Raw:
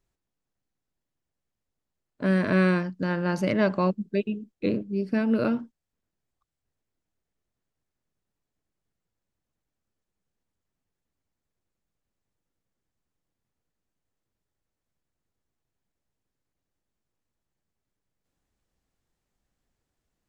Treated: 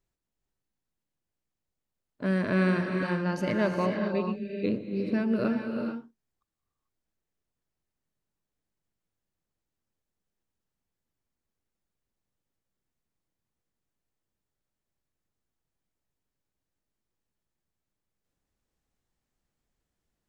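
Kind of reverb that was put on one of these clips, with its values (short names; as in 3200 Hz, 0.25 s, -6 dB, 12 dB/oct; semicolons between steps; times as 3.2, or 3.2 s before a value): non-linear reverb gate 0.47 s rising, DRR 3.5 dB; gain -4 dB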